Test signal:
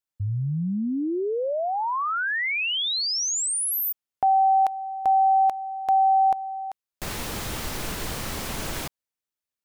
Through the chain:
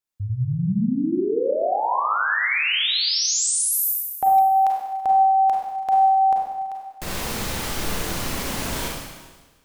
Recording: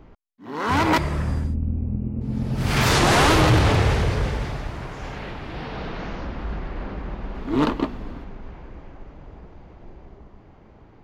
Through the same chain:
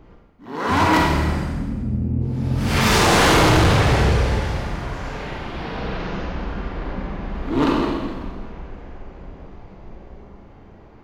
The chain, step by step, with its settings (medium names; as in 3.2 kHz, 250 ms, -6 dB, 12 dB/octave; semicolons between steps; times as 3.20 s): Schroeder reverb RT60 1.3 s, combs from 32 ms, DRR -2 dB; overload inside the chain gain 10.5 dB